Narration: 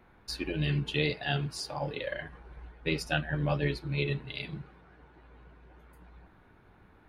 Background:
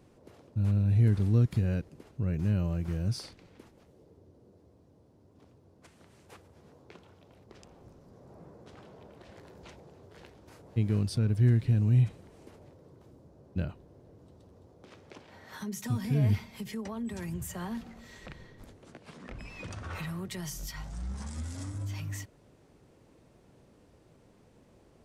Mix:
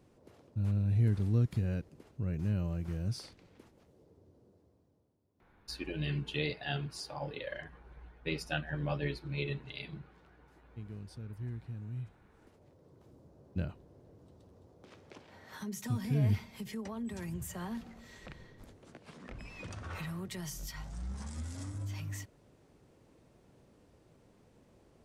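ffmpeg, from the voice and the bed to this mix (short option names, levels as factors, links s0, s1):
-filter_complex "[0:a]adelay=5400,volume=0.531[s0];[1:a]volume=3.16,afade=t=out:st=4.38:d=0.81:silence=0.223872,afade=t=in:st=12.24:d=0.96:silence=0.188365[s1];[s0][s1]amix=inputs=2:normalize=0"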